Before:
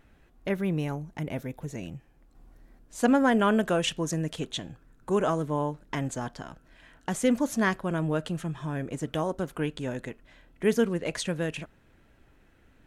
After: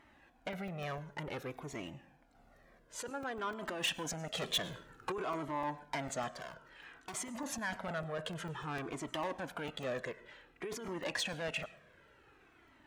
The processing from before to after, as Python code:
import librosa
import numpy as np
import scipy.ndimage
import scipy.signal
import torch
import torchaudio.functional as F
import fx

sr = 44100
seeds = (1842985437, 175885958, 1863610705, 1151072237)

y = fx.level_steps(x, sr, step_db=18, at=(3.1, 3.51))
y = fx.lowpass(y, sr, hz=2800.0, slope=6)
y = fx.over_compress(y, sr, threshold_db=-30.0, ratio=-1.0)
y = 10.0 ** (-30.0 / 20.0) * np.tanh(y / 10.0 ** (-30.0 / 20.0))
y = fx.rev_plate(y, sr, seeds[0], rt60_s=0.63, hf_ratio=0.65, predelay_ms=85, drr_db=17.5)
y = fx.leveller(y, sr, passes=2, at=(4.35, 5.12))
y = fx.clip_hard(y, sr, threshold_db=-39.5, at=(6.31, 7.13), fade=0.02)
y = fx.highpass(y, sr, hz=580.0, slope=6)
y = fx.buffer_crackle(y, sr, first_s=0.53, period_s=0.15, block=128, kind='zero')
y = fx.comb_cascade(y, sr, direction='falling', hz=0.55)
y = F.gain(torch.from_numpy(y), 6.5).numpy()